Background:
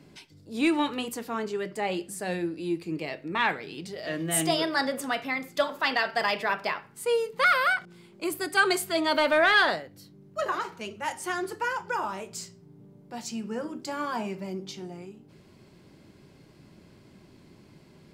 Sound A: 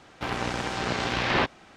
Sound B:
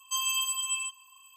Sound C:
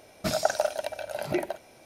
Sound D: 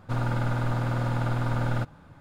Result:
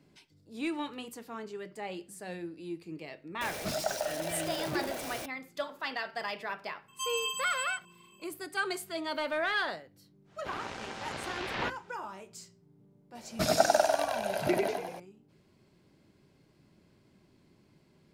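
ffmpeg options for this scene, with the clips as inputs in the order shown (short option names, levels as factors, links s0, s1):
-filter_complex "[3:a]asplit=2[s0][s1];[0:a]volume=0.316[s2];[s0]aeval=exprs='val(0)+0.5*0.0596*sgn(val(0))':c=same[s3];[2:a]highshelf=f=4900:g=-11[s4];[1:a]bandreject=f=60:t=h:w=6,bandreject=f=120:t=h:w=6,bandreject=f=180:t=h:w=6,bandreject=f=240:t=h:w=6,bandreject=f=300:t=h:w=6,bandreject=f=360:t=h:w=6,bandreject=f=420:t=h:w=6,bandreject=f=480:t=h:w=6[s5];[s1]asplit=9[s6][s7][s8][s9][s10][s11][s12][s13][s14];[s7]adelay=96,afreqshift=39,volume=0.708[s15];[s8]adelay=192,afreqshift=78,volume=0.398[s16];[s9]adelay=288,afreqshift=117,volume=0.221[s17];[s10]adelay=384,afreqshift=156,volume=0.124[s18];[s11]adelay=480,afreqshift=195,volume=0.07[s19];[s12]adelay=576,afreqshift=234,volume=0.0389[s20];[s13]adelay=672,afreqshift=273,volume=0.0219[s21];[s14]adelay=768,afreqshift=312,volume=0.0122[s22];[s6][s15][s16][s17][s18][s19][s20][s21][s22]amix=inputs=9:normalize=0[s23];[s3]atrim=end=1.85,asetpts=PTS-STARTPTS,volume=0.316,afade=t=in:d=0.004:c=hsin,afade=t=out:st=1.846:d=0.004:c=hsin,adelay=150381S[s24];[s4]atrim=end=1.36,asetpts=PTS-STARTPTS,volume=0.891,afade=t=in:d=0.004:c=hsin,afade=t=out:st=1.356:d=0.004:c=hsin,adelay=6880[s25];[s5]atrim=end=1.76,asetpts=PTS-STARTPTS,volume=0.299,afade=t=in:d=0.1,afade=t=out:st=1.66:d=0.1,adelay=10240[s26];[s23]atrim=end=1.85,asetpts=PTS-STARTPTS,volume=0.891,afade=t=in:d=0.004:c=hsin,afade=t=out:st=1.846:d=0.004:c=hsin,adelay=13150[s27];[s2][s24][s25][s26][s27]amix=inputs=5:normalize=0"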